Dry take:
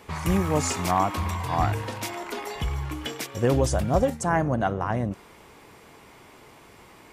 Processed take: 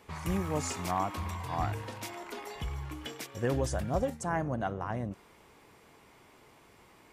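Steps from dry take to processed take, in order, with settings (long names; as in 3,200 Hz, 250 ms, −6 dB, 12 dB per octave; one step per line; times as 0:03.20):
0:03.38–0:03.90: parametric band 1,700 Hz +6 dB 0.33 octaves
level −8.5 dB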